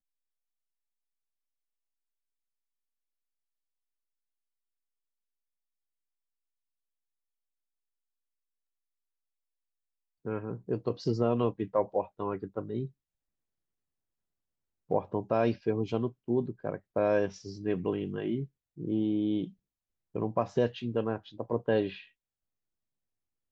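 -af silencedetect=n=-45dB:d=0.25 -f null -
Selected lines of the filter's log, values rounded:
silence_start: 0.00
silence_end: 10.25 | silence_duration: 10.25
silence_start: 12.88
silence_end: 14.90 | silence_duration: 2.03
silence_start: 18.46
silence_end: 18.78 | silence_duration: 0.32
silence_start: 19.49
silence_end: 20.15 | silence_duration: 0.66
silence_start: 22.04
silence_end: 23.51 | silence_duration: 1.47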